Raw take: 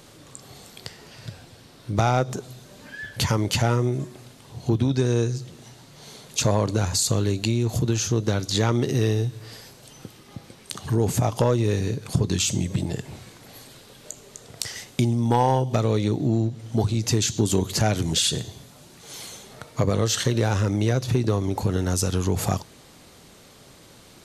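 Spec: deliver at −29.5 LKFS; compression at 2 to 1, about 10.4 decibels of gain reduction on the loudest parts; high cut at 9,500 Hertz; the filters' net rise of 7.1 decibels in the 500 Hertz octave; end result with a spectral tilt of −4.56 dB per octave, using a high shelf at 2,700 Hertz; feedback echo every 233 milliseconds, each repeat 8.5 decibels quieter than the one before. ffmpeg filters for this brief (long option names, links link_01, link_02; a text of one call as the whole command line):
ffmpeg -i in.wav -af "lowpass=9500,equalizer=frequency=500:width_type=o:gain=8.5,highshelf=frequency=2700:gain=4.5,acompressor=threshold=-31dB:ratio=2,aecho=1:1:233|466|699|932:0.376|0.143|0.0543|0.0206" out.wav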